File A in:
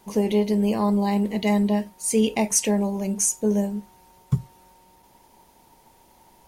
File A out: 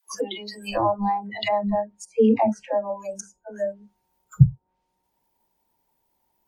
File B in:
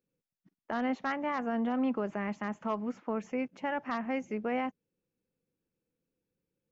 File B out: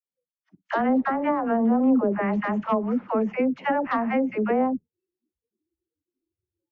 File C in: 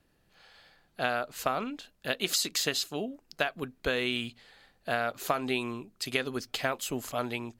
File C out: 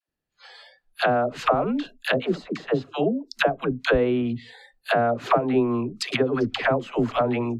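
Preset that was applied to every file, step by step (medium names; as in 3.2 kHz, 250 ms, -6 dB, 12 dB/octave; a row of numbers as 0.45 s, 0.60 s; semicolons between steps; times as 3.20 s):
phase dispersion lows, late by 88 ms, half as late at 500 Hz; spectral noise reduction 29 dB; low-pass that closes with the level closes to 820 Hz, closed at -28 dBFS; normalise loudness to -24 LUFS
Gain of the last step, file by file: +9.0 dB, +10.5 dB, +12.0 dB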